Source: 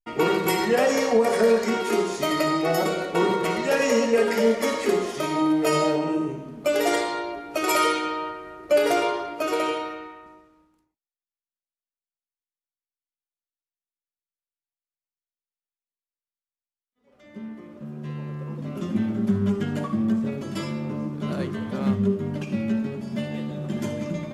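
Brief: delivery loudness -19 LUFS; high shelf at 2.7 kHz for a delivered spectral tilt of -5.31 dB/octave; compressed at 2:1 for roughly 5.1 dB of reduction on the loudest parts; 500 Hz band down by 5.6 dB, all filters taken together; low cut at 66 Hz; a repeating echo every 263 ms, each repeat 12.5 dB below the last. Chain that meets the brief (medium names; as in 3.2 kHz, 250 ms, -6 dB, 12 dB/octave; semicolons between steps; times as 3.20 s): high-pass 66 Hz; peaking EQ 500 Hz -6.5 dB; treble shelf 2.7 kHz -7.5 dB; compression 2:1, threshold -28 dBFS; feedback delay 263 ms, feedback 24%, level -12.5 dB; trim +11.5 dB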